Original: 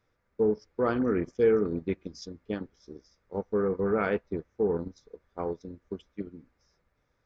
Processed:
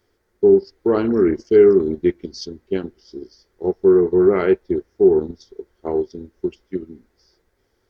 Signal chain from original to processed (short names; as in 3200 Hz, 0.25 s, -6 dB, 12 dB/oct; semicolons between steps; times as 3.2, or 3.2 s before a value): thirty-one-band EQ 160 Hz -8 dB, 400 Hz +10 dB, 1250 Hz -7 dB; speed mistake 48 kHz file played as 44.1 kHz; tone controls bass -1 dB, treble +7 dB; gain +7 dB